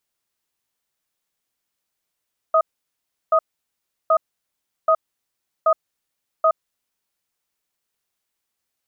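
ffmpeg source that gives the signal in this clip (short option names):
-f lavfi -i "aevalsrc='0.178*(sin(2*PI*644*t)+sin(2*PI*1250*t))*clip(min(mod(t,0.78),0.07-mod(t,0.78))/0.005,0,1)':d=4.47:s=44100"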